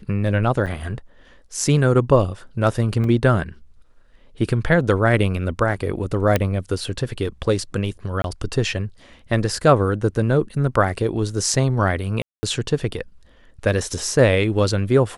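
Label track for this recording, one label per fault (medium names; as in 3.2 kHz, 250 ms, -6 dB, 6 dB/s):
0.660000	0.670000	dropout 7.2 ms
3.040000	3.040000	dropout 2.2 ms
6.360000	6.360000	pop -4 dBFS
8.220000	8.240000	dropout 22 ms
12.220000	12.430000	dropout 210 ms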